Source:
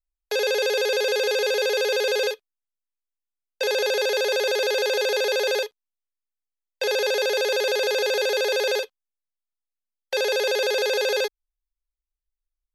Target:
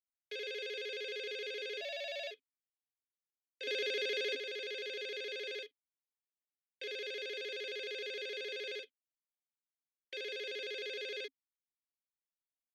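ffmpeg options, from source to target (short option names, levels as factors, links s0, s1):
-filter_complex "[0:a]asettb=1/sr,asplit=3[s0][s1][s2];[s0]atrim=end=3.674[s3];[s1]atrim=start=3.67:end=4.35,asetpts=PTS-STARTPTS,afade=t=in:d=0.004:c=qsin,afade=t=out:st=0.676:d=0.004:c=qsin,acontrast=55[s4];[s2]atrim=start=4.346[s5];[s3][s4]acrossfade=d=0.004:c1=hsin:c2=qsin[s6];[s6][s5]acrossfade=d=0.004:c1=qsin:c2=hsin,asplit=3[s7][s8][s9];[s7]bandpass=f=270:t=q:w=8,volume=1[s10];[s8]bandpass=f=2290:t=q:w=8,volume=0.501[s11];[s9]bandpass=f=3010:t=q:w=8,volume=0.355[s12];[s10][s11][s12]amix=inputs=3:normalize=0,asplit=3[s13][s14][s15];[s13]afade=t=out:st=1.8:d=0.02[s16];[s14]afreqshift=150,afade=t=in:st=1.8:d=0.02,afade=t=out:st=2.3:d=0.02[s17];[s15]afade=t=in:st=2.3:d=0.02[s18];[s16][s17][s18]amix=inputs=3:normalize=0"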